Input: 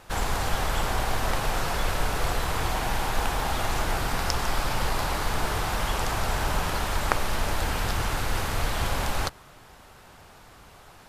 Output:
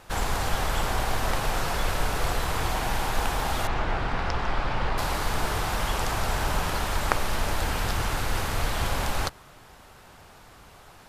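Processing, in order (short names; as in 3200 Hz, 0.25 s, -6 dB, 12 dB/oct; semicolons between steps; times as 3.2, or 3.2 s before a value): 3.67–4.98 LPF 3000 Hz 12 dB/oct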